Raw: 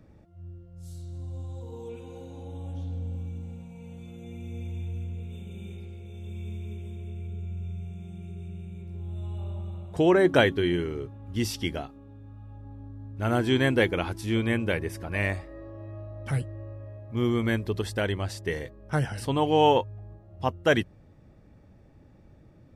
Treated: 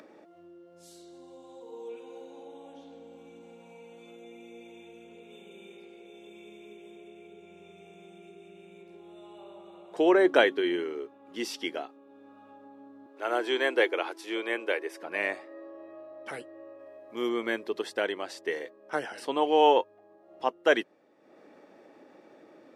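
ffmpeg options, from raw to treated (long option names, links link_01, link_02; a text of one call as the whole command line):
ffmpeg -i in.wav -filter_complex "[0:a]asettb=1/sr,asplit=3[link_01][link_02][link_03];[link_01]atrim=end=13.064[link_04];[link_02]atrim=start=13.06:end=15.03,asetpts=PTS-STARTPTS,afade=type=in:duration=0.004:curve=qsin,afade=type=out:start_time=1.966:duration=0.004:curve=qsin,highpass=frequency=330:width=0.5412,highpass=frequency=330:width=1.3066[link_05];[link_03]atrim=start=15.026[link_06];[link_04][link_05]acrossfade=duration=0.004:curve1=hsin:curve2=qsin[link_07];[link_07][link_06]acrossfade=duration=0.004:curve1=qsin:curve2=hsin,asettb=1/sr,asplit=3[link_08][link_09][link_10];[link_08]atrim=end=16.794[link_11];[link_09]atrim=start=16.79:end=17.29,asetpts=PTS-STARTPTS,afade=type=in:duration=0.004:curve=qsin,afade=type=out:start_time=0.496:duration=0.004:curve=qsin,aemphasis=mode=production:type=cd[link_12];[link_10]atrim=start=17.286[link_13];[link_11][link_12]acrossfade=duration=0.004:curve1=hsin:curve2=qsin[link_14];[link_14][link_13]acrossfade=duration=0.004:curve1=qsin:curve2=hsin,highpass=frequency=320:width=0.5412,highpass=frequency=320:width=1.3066,highshelf=frequency=7700:gain=-11.5,acompressor=mode=upward:threshold=-44dB:ratio=2.5" out.wav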